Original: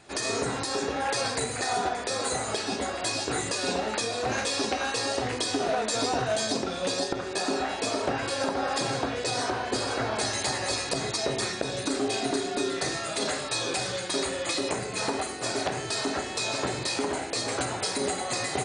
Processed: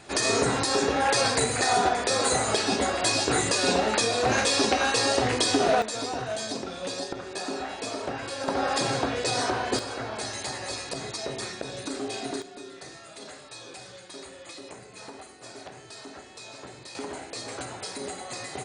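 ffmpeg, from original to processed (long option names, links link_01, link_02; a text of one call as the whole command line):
ffmpeg -i in.wav -af "asetnsamples=nb_out_samples=441:pad=0,asendcmd='5.82 volume volume -4.5dB;8.48 volume volume 2dB;9.79 volume volume -5dB;12.42 volume volume -14dB;16.95 volume volume -7dB',volume=5dB" out.wav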